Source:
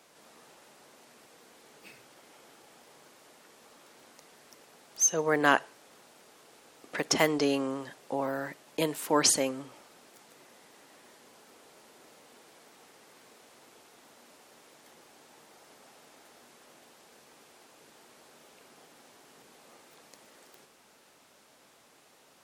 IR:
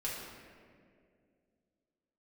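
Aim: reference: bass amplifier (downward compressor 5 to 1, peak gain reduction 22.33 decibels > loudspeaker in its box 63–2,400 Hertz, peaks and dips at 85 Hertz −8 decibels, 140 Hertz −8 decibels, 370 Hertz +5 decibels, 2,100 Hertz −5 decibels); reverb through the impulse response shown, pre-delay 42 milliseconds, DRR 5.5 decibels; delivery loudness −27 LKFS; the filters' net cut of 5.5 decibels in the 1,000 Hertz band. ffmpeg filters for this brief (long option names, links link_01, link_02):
-filter_complex "[0:a]equalizer=frequency=1000:width_type=o:gain=-7,asplit=2[link_01][link_02];[1:a]atrim=start_sample=2205,adelay=42[link_03];[link_02][link_03]afir=irnorm=-1:irlink=0,volume=-8.5dB[link_04];[link_01][link_04]amix=inputs=2:normalize=0,acompressor=threshold=-45dB:ratio=5,highpass=frequency=63:width=0.5412,highpass=frequency=63:width=1.3066,equalizer=frequency=85:width_type=q:width=4:gain=-8,equalizer=frequency=140:width_type=q:width=4:gain=-8,equalizer=frequency=370:width_type=q:width=4:gain=5,equalizer=frequency=2100:width_type=q:width=4:gain=-5,lowpass=frequency=2400:width=0.5412,lowpass=frequency=2400:width=1.3066,volume=26dB"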